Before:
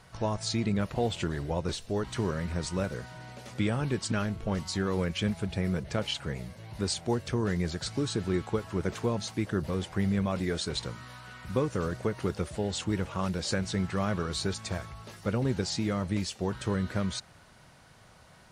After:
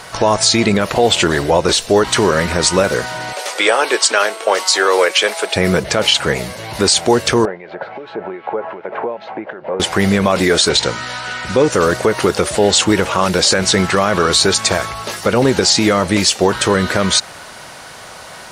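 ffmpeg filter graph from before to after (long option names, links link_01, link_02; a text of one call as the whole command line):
ffmpeg -i in.wav -filter_complex "[0:a]asettb=1/sr,asplit=3[link_01][link_02][link_03];[link_01]atrim=end=3.334[link_04];[link_02]atrim=start=3.33:end=5.56,asetpts=PTS-STARTPTS,afade=type=in:duration=0.004:curve=qsin,afade=type=out:start_time=2.226:duration=0.004:curve=qsin,highpass=frequency=430:width=0.5412,highpass=frequency=430:width=1.3066,aeval=exprs='val(0)+0.000562*sin(2*PI*8500*n/s)':channel_layout=same[link_05];[link_03]atrim=start=5.556[link_06];[link_04][link_05]acrossfade=duration=0.004:curve1=hsin:curve2=qsin[link_07];[link_07][link_06]acrossfade=duration=0.004:curve1=qsin:curve2=hsin,asettb=1/sr,asplit=3[link_08][link_09][link_10];[link_08]atrim=end=7.454[link_11];[link_09]atrim=start=7.45:end=9.8,asetpts=PTS-STARTPTS,afade=type=in:duration=0.004:curve=qsin,afade=type=out:start_time=2.346:duration=0.004:curve=qsin,acompressor=threshold=-35dB:ratio=5:attack=3.2:release=140:knee=1:detection=peak,acrossover=split=2000[link_12][link_13];[link_12]aeval=exprs='val(0)*(1-0.7/2+0.7/2*cos(2*PI*2.6*n/s))':channel_layout=same[link_14];[link_13]aeval=exprs='val(0)*(1-0.7/2-0.7/2*cos(2*PI*2.6*n/s))':channel_layout=same[link_15];[link_14][link_15]amix=inputs=2:normalize=0,highpass=260,equalizer=frequency=280:width_type=q:width=4:gain=-6,equalizer=frequency=580:width_type=q:width=4:gain=6,equalizer=frequency=830:width_type=q:width=4:gain=5,equalizer=frequency=1200:width_type=q:width=4:gain=-5,equalizer=frequency=1800:width_type=q:width=4:gain=-4,lowpass=frequency=2100:width=0.5412,lowpass=frequency=2100:width=1.3066[link_16];[link_10]atrim=start=9.796[link_17];[link_11][link_16]acrossfade=duration=0.004:curve1=hsin:curve2=qsin[link_18];[link_18][link_17]acrossfade=duration=0.004:curve1=qsin:curve2=hsin,asettb=1/sr,asplit=3[link_19][link_20][link_21];[link_19]atrim=end=10.694[link_22];[link_20]atrim=start=10.69:end=11.72,asetpts=PTS-STARTPTS,afade=type=in:duration=0.004:curve=qsin,afade=type=out:start_time=1.026:duration=0.004:curve=qsin,lowpass=frequency=8200:width=0.5412,lowpass=frequency=8200:width=1.3066,bandreject=frequency=1100:width=6.3[link_23];[link_21]atrim=start=11.716[link_24];[link_22][link_23]acrossfade=duration=0.004:curve1=hsin:curve2=qsin[link_25];[link_25][link_24]acrossfade=duration=0.004:curve1=qsin:curve2=hsin,bass=frequency=250:gain=-14,treble=frequency=4000:gain=2,alimiter=level_in=24.5dB:limit=-1dB:release=50:level=0:latency=1,volume=-1dB" out.wav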